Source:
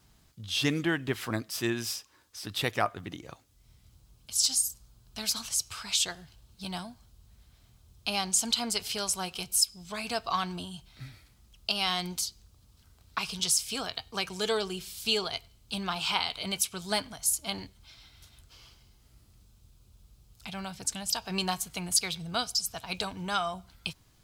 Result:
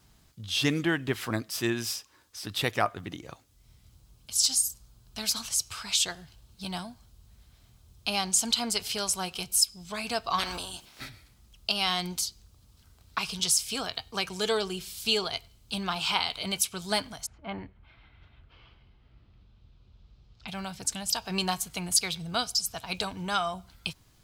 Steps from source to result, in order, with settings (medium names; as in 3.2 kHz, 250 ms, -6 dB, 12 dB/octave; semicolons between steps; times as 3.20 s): 10.38–11.08 s: spectral peaks clipped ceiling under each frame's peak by 24 dB; 17.25–20.47 s: low-pass 2 kHz -> 4.8 kHz 24 dB/octave; trim +1.5 dB